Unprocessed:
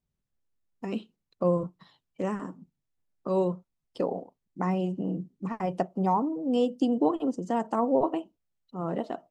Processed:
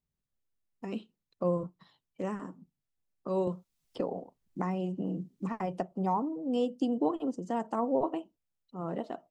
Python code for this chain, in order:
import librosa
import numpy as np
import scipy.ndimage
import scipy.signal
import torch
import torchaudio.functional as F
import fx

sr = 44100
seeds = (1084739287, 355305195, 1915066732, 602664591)

y = fx.band_squash(x, sr, depth_pct=70, at=(3.47, 5.92))
y = y * 10.0 ** (-4.5 / 20.0)